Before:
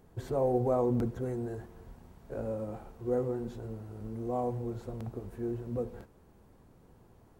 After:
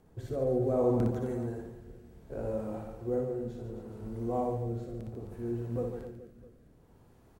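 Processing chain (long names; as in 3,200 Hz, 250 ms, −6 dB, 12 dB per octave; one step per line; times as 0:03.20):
reverse bouncing-ball delay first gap 60 ms, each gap 1.4×, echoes 5
rotating-speaker cabinet horn 0.65 Hz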